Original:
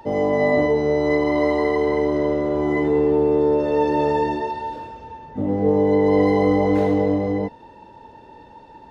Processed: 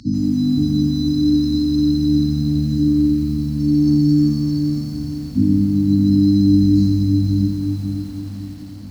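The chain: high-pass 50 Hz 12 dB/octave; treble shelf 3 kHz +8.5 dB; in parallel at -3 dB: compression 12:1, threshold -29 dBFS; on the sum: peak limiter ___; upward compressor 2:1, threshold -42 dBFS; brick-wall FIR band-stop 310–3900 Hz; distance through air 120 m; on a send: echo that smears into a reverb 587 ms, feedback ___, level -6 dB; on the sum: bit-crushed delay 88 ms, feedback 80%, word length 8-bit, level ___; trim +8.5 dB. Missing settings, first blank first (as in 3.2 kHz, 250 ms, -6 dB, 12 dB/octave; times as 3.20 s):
-9.5 dBFS, 45%, -12 dB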